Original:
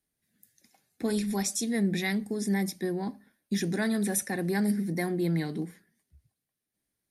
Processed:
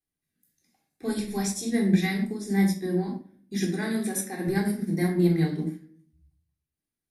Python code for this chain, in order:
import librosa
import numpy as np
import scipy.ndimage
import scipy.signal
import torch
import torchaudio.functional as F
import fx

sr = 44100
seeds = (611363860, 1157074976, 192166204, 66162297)

y = fx.highpass(x, sr, hz=190.0, slope=12, at=(3.61, 4.48))
y = fx.room_shoebox(y, sr, seeds[0], volume_m3=730.0, walls='furnished', distance_m=3.7)
y = fx.upward_expand(y, sr, threshold_db=-38.0, expansion=1.5)